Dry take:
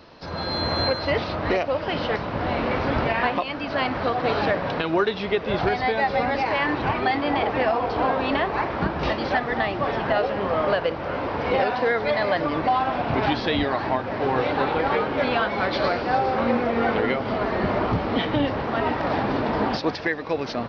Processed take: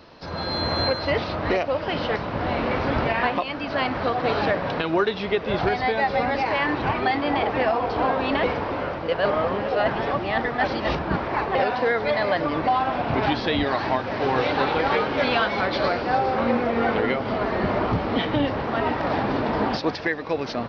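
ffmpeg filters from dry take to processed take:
ffmpeg -i in.wav -filter_complex "[0:a]asettb=1/sr,asplit=3[link_01][link_02][link_03];[link_01]atrim=end=13.664[link_04];[link_02]atrim=start=13.66:end=15.61,asetpts=PTS-STARTPTS,afade=type=in:duration=0.004:curve=qsin,afade=type=out:start_time=1.946:duration=0.004:curve=qsin,highshelf=frequency=3100:gain=8.5[link_05];[link_03]atrim=start=15.606[link_06];[link_04][link_05]acrossfade=duration=0.004:curve1=hsin:curve2=qsin[link_07];[link_07][link_06]acrossfade=duration=0.004:curve1=qsin:curve2=hsin,asplit=3[link_08][link_09][link_10];[link_08]atrim=end=8.432[link_11];[link_09]atrim=start=8.428:end=11.552,asetpts=PTS-STARTPTS,areverse[link_12];[link_10]atrim=start=11.548[link_13];[link_11][link_12]acrossfade=duration=0.004:curve1=hsin:curve2=hsin[link_14];[link_14][link_13]acrossfade=duration=0.004:curve1=hsin:curve2=hsin" out.wav

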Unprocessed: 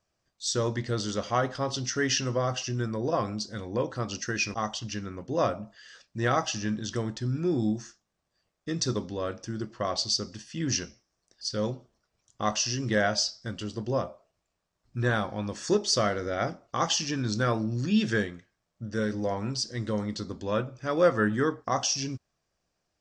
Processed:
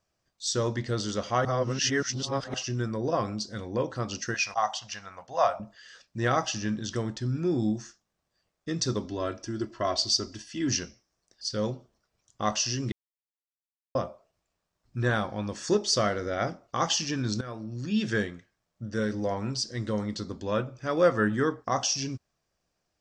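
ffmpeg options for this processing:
ffmpeg -i in.wav -filter_complex "[0:a]asettb=1/sr,asplit=3[link_01][link_02][link_03];[link_01]atrim=end=4.344[link_04];[link_02]atrim=start=4.34:end=5.6,asetpts=PTS-STARTPTS,afade=type=in:duration=0.004:curve=qsin,afade=type=out:start_time=1.256:duration=0.004:curve=qsin,lowshelf=frequency=500:width_type=q:width=3:gain=-13.5[link_05];[link_03]atrim=start=5.596[link_06];[link_04][link_05]acrossfade=duration=0.004:curve1=hsin:curve2=qsin[link_07];[link_07][link_06]acrossfade=duration=0.004:curve1=qsin:curve2=hsin,asettb=1/sr,asplit=3[link_08][link_09][link_10];[link_08]atrim=end=9.054[link_11];[link_09]atrim=start=9.05:end=10.69,asetpts=PTS-STARTPTS,afade=type=in:duration=0.004:curve=qsin,afade=type=out:start_time=1.636:duration=0.004:curve=qsin,aecho=1:1:3:0.65,atrim=end_sample=72324[link_12];[link_10]atrim=start=10.686[link_13];[link_11][link_12]acrossfade=duration=0.004:curve1=hsin:curve2=qsin[link_14];[link_14][link_13]acrossfade=duration=0.004:curve1=qsin:curve2=hsin,asplit=6[link_15][link_16][link_17][link_18][link_19][link_20];[link_15]atrim=end=1.452[link_21];[link_16]atrim=start=1.448:end=2.542,asetpts=PTS-STARTPTS,areverse[link_22];[link_17]atrim=start=2.538:end=12.92,asetpts=PTS-STARTPTS,afade=type=out:start_time=10.378:duration=0.004:curve=hsin[link_23];[link_18]atrim=start=12.92:end=13.95,asetpts=PTS-STARTPTS,volume=0[link_24];[link_19]atrim=start=13.95:end=17.41,asetpts=PTS-STARTPTS,afade=type=in:duration=0.004:curve=hsin,afade=type=out:start_time=3.456:duration=0.004:curve=hsin:silence=0.149624[link_25];[link_20]atrim=start=17.41,asetpts=PTS-STARTPTS,afade=type=in:duration=0.84:silence=0.149624[link_26];[link_21][link_22]acrossfade=duration=0.004:curve1=hsin:curve2=hsin[link_27];[link_23][link_24][link_25][link_26]concat=n=4:v=0:a=1[link_28];[link_27][link_28]acrossfade=duration=0.004:curve1=hsin:curve2=hsin" out.wav

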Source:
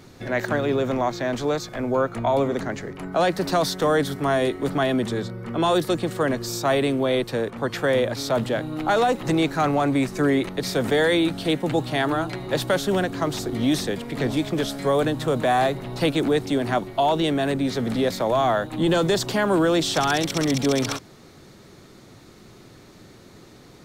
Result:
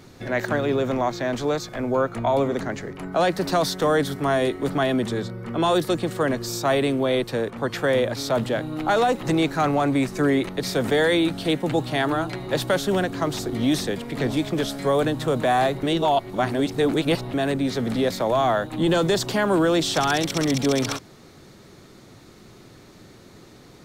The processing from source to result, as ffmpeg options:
ffmpeg -i in.wav -filter_complex "[0:a]asplit=3[link_01][link_02][link_03];[link_01]atrim=end=15.832[link_04];[link_02]atrim=start=15.828:end=17.342,asetpts=PTS-STARTPTS,areverse[link_05];[link_03]atrim=start=17.338[link_06];[link_04][link_05]acrossfade=duration=0.004:curve1=hsin:curve2=hsin[link_07];[link_07][link_06]acrossfade=duration=0.004:curve1=hsin:curve2=hsin" out.wav

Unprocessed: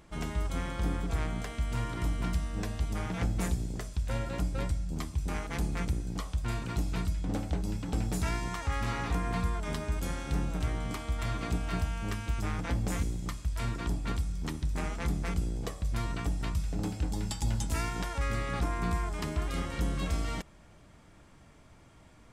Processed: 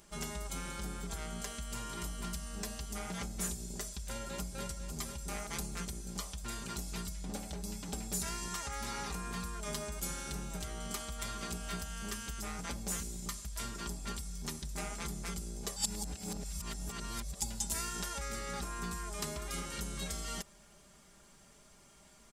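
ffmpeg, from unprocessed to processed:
ffmpeg -i in.wav -filter_complex "[0:a]asplit=2[link_01][link_02];[link_02]afade=type=in:start_time=3.98:duration=0.01,afade=type=out:start_time=4.65:duration=0.01,aecho=0:1:500|1000|1500|2000|2500|3000:0.375837|0.187919|0.0939594|0.0469797|0.0234898|0.0117449[link_03];[link_01][link_03]amix=inputs=2:normalize=0,asplit=3[link_04][link_05][link_06];[link_04]atrim=end=15.762[link_07];[link_05]atrim=start=15.758:end=17.402,asetpts=PTS-STARTPTS,areverse[link_08];[link_06]atrim=start=17.398[link_09];[link_07][link_08]acrossfade=duration=0.004:curve1=hsin:curve2=hsin[link_10];[link_10][link_09]acrossfade=duration=0.004:curve1=hsin:curve2=hsin,acompressor=threshold=-31dB:ratio=3,bass=frequency=250:gain=-4,treble=frequency=4000:gain=13,aecho=1:1:5:0.67,volume=-5dB" out.wav

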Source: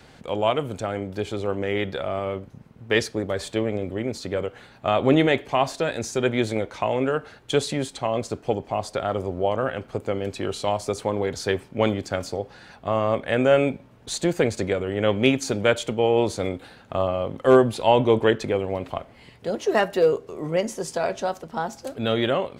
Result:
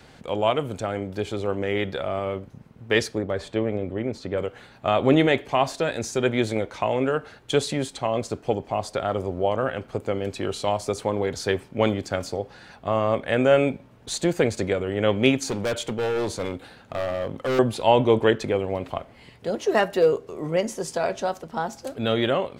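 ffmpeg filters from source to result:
ffmpeg -i in.wav -filter_complex "[0:a]asettb=1/sr,asplit=3[link_01][link_02][link_03];[link_01]atrim=end=3.184[link_04];[link_02]atrim=start=3.18:end=4.38,asetpts=PTS-STARTPTS,afade=type=in:duration=0.004:curve=qsin,afade=type=out:start_time=1.196:duration=0.004:curve=qsin,lowpass=frequency=2300:poles=1[link_05];[link_03]atrim=start=4.376[link_06];[link_04][link_05]acrossfade=duration=0.004:curve1=hsin:curve2=qsin[link_07];[link_07][link_06]acrossfade=duration=0.004:curve1=qsin:curve2=hsin,asettb=1/sr,asplit=3[link_08][link_09][link_10];[link_08]atrim=end=15.444[link_11];[link_09]atrim=start=15.44:end=17.59,asetpts=PTS-STARTPTS,afade=type=in:duration=0.004:curve=qsin,afade=type=out:start_time=2.146:duration=0.004:curve=qsin,asoftclip=type=hard:threshold=-22dB[link_12];[link_10]atrim=start=17.586[link_13];[link_11][link_12]acrossfade=duration=0.004:curve1=hsin:curve2=qsin[link_14];[link_14][link_13]acrossfade=duration=0.004:curve1=qsin:curve2=hsin" out.wav

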